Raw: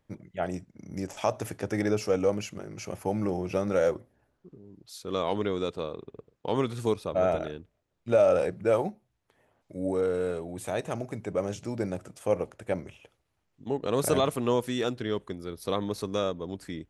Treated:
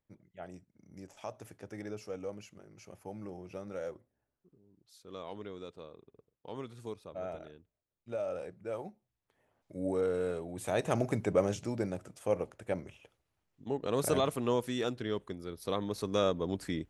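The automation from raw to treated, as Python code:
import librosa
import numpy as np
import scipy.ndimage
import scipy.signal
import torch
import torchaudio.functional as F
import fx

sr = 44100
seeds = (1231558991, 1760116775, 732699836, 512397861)

y = fx.gain(x, sr, db=fx.line((8.66, -15.0), (9.78, -4.0), (10.54, -4.0), (11.08, 5.0), (11.94, -4.5), (15.89, -4.5), (16.38, 2.0)))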